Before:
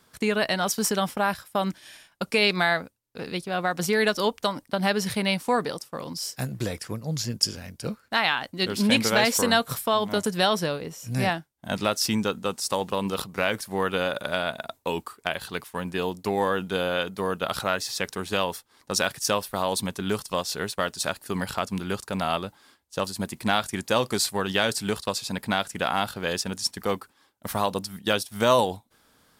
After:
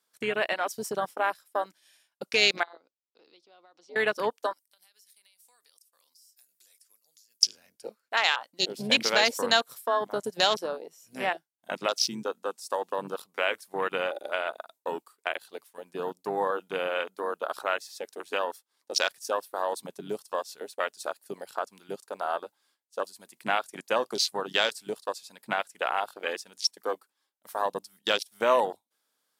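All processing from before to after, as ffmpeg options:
ffmpeg -i in.wav -filter_complex "[0:a]asettb=1/sr,asplit=3[link_01][link_02][link_03];[link_01]atrim=end=2.634[link_04];[link_02]atrim=start=2.63:end=3.96,asetpts=PTS-STARTPTS,afade=type=in:duration=0.004:curve=qsin,afade=type=out:start_time=1.326:duration=0.004:curve=qsin,acompressor=threshold=-35dB:ratio=4:attack=3.2:release=140:knee=1:detection=peak,highpass=310,equalizer=frequency=320:width_type=q:width=4:gain=7,equalizer=frequency=1700:width_type=q:width=4:gain=-10,equalizer=frequency=2400:width_type=q:width=4:gain=-4,lowpass=frequency=5400:width=0.5412,lowpass=frequency=5400:width=1.3066[link_05];[link_03]atrim=start=3.956[link_06];[link_04][link_05]acrossfade=duration=0.004:curve1=hsin:curve2=qsin[link_07];[link_07][link_06]acrossfade=duration=0.004:curve1=qsin:curve2=hsin,asettb=1/sr,asplit=3[link_08][link_09][link_10];[link_08]atrim=end=4.534[link_11];[link_09]atrim=start=4.53:end=7.42,asetpts=PTS-STARTPTS,afade=type=in:duration=0.004:curve=qsin,afade=type=out:start_time=2.886:duration=0.004:curve=qsin,aderivative,acompressor=threshold=-42dB:ratio=16:attack=3.2:release=140:knee=1:detection=peak[link_12];[link_10]atrim=start=7.416[link_13];[link_11][link_12]acrossfade=duration=0.004:curve1=hsin:curve2=qsin[link_14];[link_14][link_13]acrossfade=duration=0.004:curve1=qsin:curve2=hsin,highpass=500,afwtdn=0.0355,equalizer=frequency=1100:width=0.34:gain=-7,volume=5dB" out.wav

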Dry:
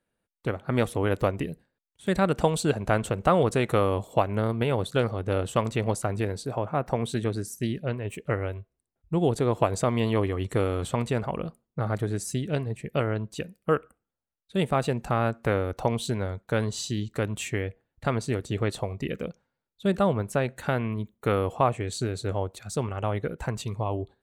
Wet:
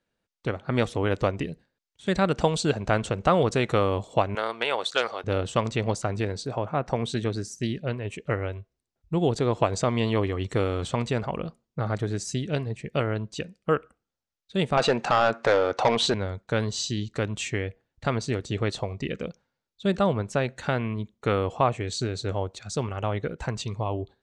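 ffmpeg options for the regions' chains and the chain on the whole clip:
ffmpeg -i in.wav -filter_complex "[0:a]asettb=1/sr,asplit=3[link_01][link_02][link_03];[link_01]atrim=end=4.354[link_04];[link_02]atrim=start=4.35:end=5.24,asetpts=PTS-STARTPTS,afade=type=in:duration=0.004:curve=qsin,afade=type=out:start_time=0.886:duration=0.004:curve=qsin,highpass=730,acontrast=37,asoftclip=type=hard:threshold=-12dB[link_05];[link_03]atrim=start=5.236[link_06];[link_04][link_05]acrossfade=duration=0.004:curve1=hsin:curve2=qsin[link_07];[link_07][link_06]acrossfade=duration=0.004:curve1=qsin:curve2=hsin,asettb=1/sr,asplit=3[link_08][link_09][link_10];[link_08]atrim=end=14.774[link_11];[link_09]atrim=start=14.77:end=16.14,asetpts=PTS-STARTPTS,afade=type=in:duration=0.004:curve=qsin,afade=type=out:start_time=1.366:duration=0.004:curve=qsin,highpass=frequency=180:poles=1,asplit=2[link_12][link_13];[link_13]highpass=frequency=720:poles=1,volume=21dB,asoftclip=type=tanh:threshold=-10dB[link_14];[link_12][link_14]amix=inputs=2:normalize=0,lowpass=frequency=2300:poles=1,volume=-6dB[link_15];[link_10]atrim=start=16.136[link_16];[link_11][link_15]acrossfade=duration=0.004:curve1=hsin:curve2=qsin[link_17];[link_17][link_16]acrossfade=duration=0.004:curve1=qsin:curve2=hsin,lowpass=frequency=6300:width=0.5412,lowpass=frequency=6300:width=1.3066,highshelf=frequency=4800:gain=11" out.wav

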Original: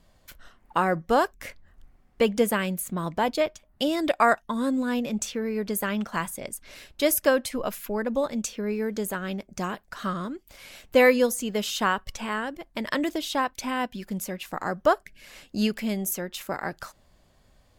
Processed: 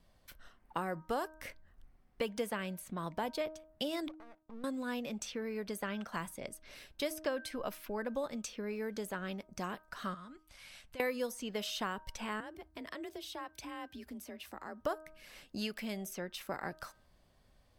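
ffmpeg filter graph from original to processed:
ffmpeg -i in.wav -filter_complex "[0:a]asettb=1/sr,asplit=3[link_01][link_02][link_03];[link_01]atrim=end=4.084[link_04];[link_02]atrim=start=4.08:end=4.64,asetpts=PTS-STARTPTS,afade=type=in:duration=0.004:curve=qsin,afade=type=out:start_time=0.556:duration=0.004:curve=qsin,acompressor=threshold=-33dB:ratio=4:attack=3.2:release=140:knee=1:detection=peak,bandpass=frequency=200:width_type=q:width=0.71,aeval=exprs='max(val(0),0)':channel_layout=same[link_05];[link_03]atrim=start=4.636[link_06];[link_04][link_05]acrossfade=duration=0.004:curve1=hsin:curve2=qsin[link_07];[link_07][link_06]acrossfade=duration=0.004:curve1=qsin:curve2=hsin,asettb=1/sr,asplit=3[link_08][link_09][link_10];[link_08]atrim=end=10.144[link_11];[link_09]atrim=start=10.14:end=11,asetpts=PTS-STARTPTS,afade=type=in:duration=0.004:curve=qsin,afade=type=out:start_time=0.856:duration=0.004:curve=qsin,lowpass=frequency=11000:width=0.5412,lowpass=frequency=11000:width=1.3066,equalizer=frequency=390:width=0.92:gain=-11.5,acompressor=threshold=-41dB:ratio=4:attack=3.2:release=140:knee=1:detection=peak[link_12];[link_10]atrim=start=10.996[link_13];[link_11][link_12]acrossfade=duration=0.004:curve1=hsin:curve2=qsin[link_14];[link_14][link_13]acrossfade=duration=0.004:curve1=qsin:curve2=hsin,asettb=1/sr,asplit=3[link_15][link_16][link_17];[link_15]atrim=end=12.404[link_18];[link_16]atrim=start=12.4:end=14.84,asetpts=PTS-STARTPTS,afade=type=in:duration=0.004:curve=qsin,afade=type=out:start_time=2.436:duration=0.004:curve=qsin,acompressor=threshold=-38dB:ratio=2.5:attack=3.2:release=140:knee=1:detection=peak,afreqshift=37[link_19];[link_17]atrim=start=14.836[link_20];[link_18][link_19]acrossfade=duration=0.004:curve1=hsin:curve2=qsin[link_21];[link_21][link_20]acrossfade=duration=0.004:curve1=qsin:curve2=hsin,bandreject=frequency=7000:width=8.5,bandreject=frequency=313.5:width_type=h:width=4,bandreject=frequency=627:width_type=h:width=4,bandreject=frequency=940.5:width_type=h:width=4,bandreject=frequency=1254:width_type=h:width=4,bandreject=frequency=1567.5:width_type=h:width=4,acrossover=split=500|6700[link_22][link_23][link_24];[link_22]acompressor=threshold=-33dB:ratio=4[link_25];[link_23]acompressor=threshold=-29dB:ratio=4[link_26];[link_24]acompressor=threshold=-45dB:ratio=4[link_27];[link_25][link_26][link_27]amix=inputs=3:normalize=0,volume=-7dB" out.wav

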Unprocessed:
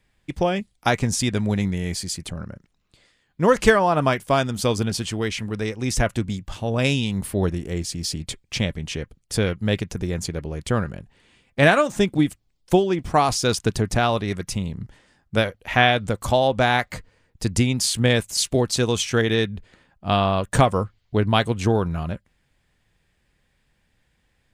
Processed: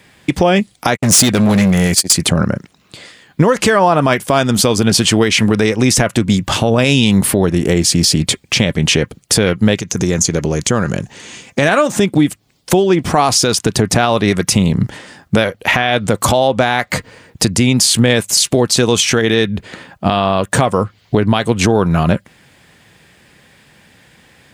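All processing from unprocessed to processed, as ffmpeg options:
ffmpeg -i in.wav -filter_complex "[0:a]asettb=1/sr,asplit=3[link_01][link_02][link_03];[link_01]atrim=end=0.944[link_04];[link_02]atrim=start=0.94:end=2.13,asetpts=PTS-STARTPTS,afade=type=in:duration=0.004:curve=qsin,afade=type=out:start_time=1.186:duration=0.004:curve=qsin,agate=range=-58dB:threshold=-29dB:ratio=16:release=100:detection=peak,highshelf=frequency=8400:gain=10,asoftclip=type=hard:threshold=-23dB[link_05];[link_03]atrim=start=2.126[link_06];[link_04][link_05]acrossfade=duration=0.004:curve1=hsin:curve2=qsin[link_07];[link_07][link_06]acrossfade=duration=0.004:curve1=qsin:curve2=hsin,asettb=1/sr,asplit=3[link_08][link_09][link_10];[link_08]atrim=end=9.754[link_11];[link_09]atrim=start=9.75:end=11.69,asetpts=PTS-STARTPTS,afade=type=in:duration=0.004:curve=qsin,afade=type=out:start_time=1.936:duration=0.004:curve=qsin,equalizer=frequency=6400:width_type=o:width=0.49:gain=14.5,acompressor=threshold=-33dB:ratio=3:attack=3.2:release=140:knee=1:detection=peak[link_12];[link_10]atrim=start=11.686[link_13];[link_11][link_12]acrossfade=duration=0.004:curve1=hsin:curve2=qsin[link_14];[link_14][link_13]acrossfade=duration=0.004:curve1=qsin:curve2=hsin,highpass=130,acompressor=threshold=-30dB:ratio=5,alimiter=level_in=23.5dB:limit=-1dB:release=50:level=0:latency=1,volume=-1dB" out.wav

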